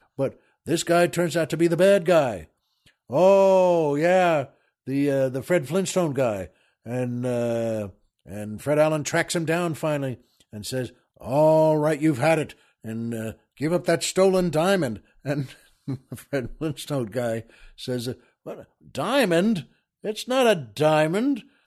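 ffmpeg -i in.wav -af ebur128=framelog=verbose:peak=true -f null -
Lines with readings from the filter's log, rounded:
Integrated loudness:
  I:         -23.0 LUFS
  Threshold: -33.9 LUFS
Loudness range:
  LRA:         7.2 LU
  Threshold: -44.1 LUFS
  LRA low:   -27.8 LUFS
  LRA high:  -20.5 LUFS
True peak:
  Peak:       -6.4 dBFS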